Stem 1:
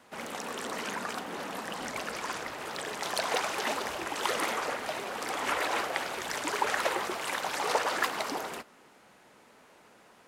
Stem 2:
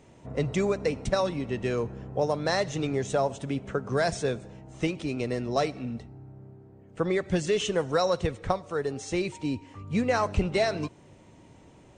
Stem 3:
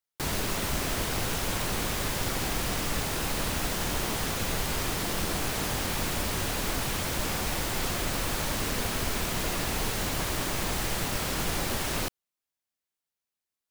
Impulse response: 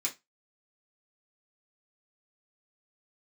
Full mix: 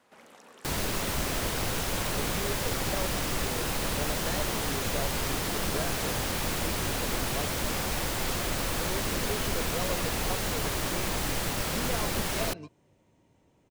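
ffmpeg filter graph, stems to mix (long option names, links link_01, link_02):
-filter_complex "[0:a]acompressor=threshold=-50dB:ratio=2,volume=-7.5dB[link_01];[1:a]adelay=1800,volume=-12.5dB[link_02];[2:a]adelay=450,volume=-0.5dB[link_03];[link_01][link_02][link_03]amix=inputs=3:normalize=0,equalizer=frequency=530:width_type=o:width=0.37:gain=2"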